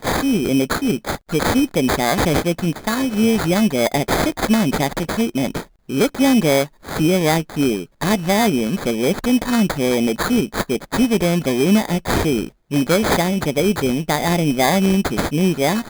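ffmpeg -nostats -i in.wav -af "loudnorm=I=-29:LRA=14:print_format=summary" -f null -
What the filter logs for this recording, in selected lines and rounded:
Input Integrated:    -18.4 LUFS
Input True Peak:      -2.5 dBTP
Input LRA:             0.9 LU
Input Threshold:     -28.4 LUFS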